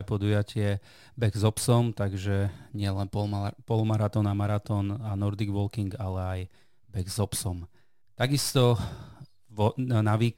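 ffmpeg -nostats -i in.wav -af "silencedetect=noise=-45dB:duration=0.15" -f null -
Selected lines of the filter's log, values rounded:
silence_start: 6.46
silence_end: 6.94 | silence_duration: 0.47
silence_start: 7.65
silence_end: 8.18 | silence_duration: 0.53
silence_start: 9.25
silence_end: 9.51 | silence_duration: 0.26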